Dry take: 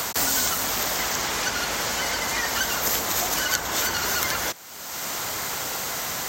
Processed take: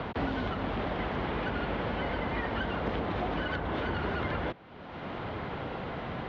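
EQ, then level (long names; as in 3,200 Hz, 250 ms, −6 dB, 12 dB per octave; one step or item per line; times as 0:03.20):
Butterworth low-pass 3,400 Hz 36 dB per octave
tilt shelving filter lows +9 dB, about 730 Hz
−3.5 dB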